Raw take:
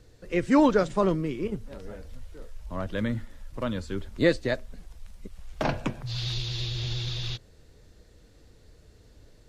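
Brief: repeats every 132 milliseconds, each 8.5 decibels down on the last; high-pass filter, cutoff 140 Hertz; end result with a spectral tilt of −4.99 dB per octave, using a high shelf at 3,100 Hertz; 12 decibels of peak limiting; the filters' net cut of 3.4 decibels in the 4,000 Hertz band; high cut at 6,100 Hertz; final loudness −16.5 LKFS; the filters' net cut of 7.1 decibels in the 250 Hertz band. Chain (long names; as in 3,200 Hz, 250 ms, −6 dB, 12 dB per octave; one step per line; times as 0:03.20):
high-pass filter 140 Hz
low-pass filter 6,100 Hz
parametric band 250 Hz −9 dB
high-shelf EQ 3,100 Hz +7.5 dB
parametric band 4,000 Hz −8.5 dB
brickwall limiter −23.5 dBFS
repeating echo 132 ms, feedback 38%, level −8.5 dB
level +19.5 dB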